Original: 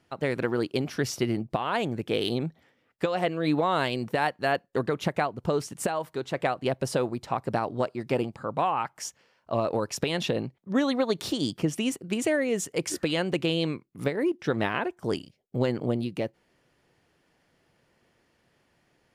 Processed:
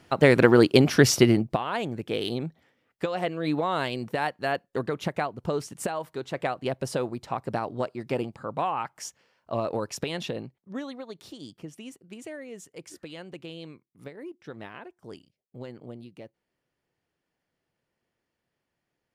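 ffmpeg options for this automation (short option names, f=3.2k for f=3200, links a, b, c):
-af "volume=10.5dB,afade=t=out:st=1.12:d=0.53:silence=0.237137,afade=t=out:st=9.85:d=1.15:silence=0.237137"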